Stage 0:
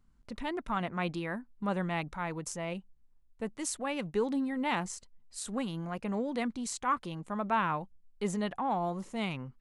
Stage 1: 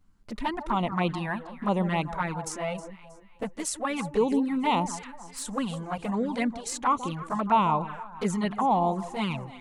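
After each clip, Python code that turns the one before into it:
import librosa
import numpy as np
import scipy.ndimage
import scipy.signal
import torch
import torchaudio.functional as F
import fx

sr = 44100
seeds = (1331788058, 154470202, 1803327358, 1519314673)

y = fx.dynamic_eq(x, sr, hz=950.0, q=2.0, threshold_db=-47.0, ratio=4.0, max_db=6)
y = fx.echo_alternate(y, sr, ms=158, hz=1200.0, feedback_pct=59, wet_db=-11)
y = fx.env_flanger(y, sr, rest_ms=11.0, full_db=-26.0)
y = y * 10.0 ** (7.0 / 20.0)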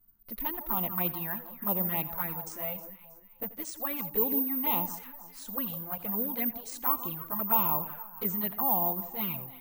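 y = x + 10.0 ** (-17.5 / 20.0) * np.pad(x, (int(84 * sr / 1000.0), 0))[:len(x)]
y = (np.kron(scipy.signal.resample_poly(y, 1, 3), np.eye(3)[0]) * 3)[:len(y)]
y = y * 10.0 ** (-8.5 / 20.0)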